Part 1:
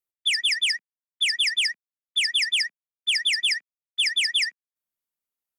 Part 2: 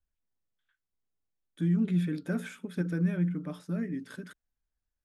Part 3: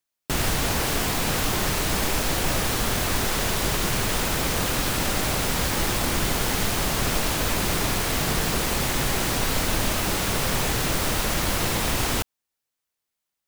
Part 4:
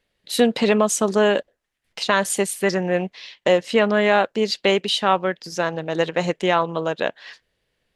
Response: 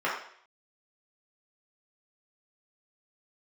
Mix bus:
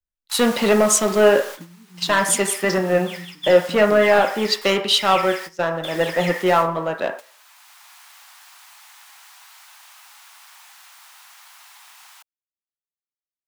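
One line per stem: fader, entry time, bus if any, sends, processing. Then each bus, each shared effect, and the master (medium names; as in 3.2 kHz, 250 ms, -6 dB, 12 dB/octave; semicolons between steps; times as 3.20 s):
-18.0 dB, 1.85 s, bus A, send -5 dB, step-sequenced high-pass 3.5 Hz 260–3500 Hz
-2.0 dB, 0.00 s, bus A, no send, three bands compressed up and down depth 100%
-1.5 dB, 0.00 s, bus A, no send, steep high-pass 800 Hz 48 dB/octave; auto duck -11 dB, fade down 1.95 s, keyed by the fourth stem
-6.5 dB, 0.00 s, no bus, send -14 dB, waveshaping leveller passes 2; three bands expanded up and down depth 70%
bus A: 0.0 dB, gate with hold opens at -28 dBFS; compression 2:1, threshold -35 dBFS, peak gain reduction 6 dB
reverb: on, RT60 0.60 s, pre-delay 3 ms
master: gate -31 dBFS, range -13 dB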